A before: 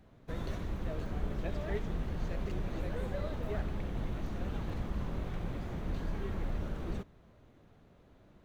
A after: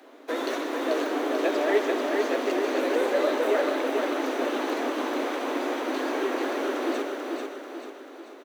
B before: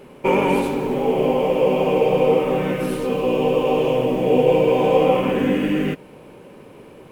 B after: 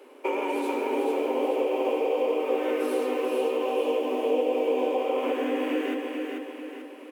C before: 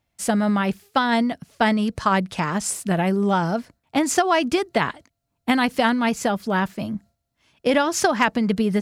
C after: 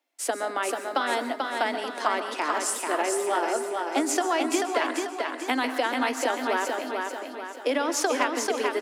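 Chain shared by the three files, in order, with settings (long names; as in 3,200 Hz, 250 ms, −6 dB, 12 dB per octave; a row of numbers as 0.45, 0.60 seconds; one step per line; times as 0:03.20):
Butterworth high-pass 260 Hz 96 dB per octave
downward compressor, threshold −19 dBFS
repeating echo 439 ms, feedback 47%, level −4 dB
dense smooth reverb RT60 0.55 s, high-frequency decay 0.6×, pre-delay 115 ms, DRR 10.5 dB
loudness normalisation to −27 LKFS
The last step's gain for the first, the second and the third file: +15.5, −5.5, −2.5 decibels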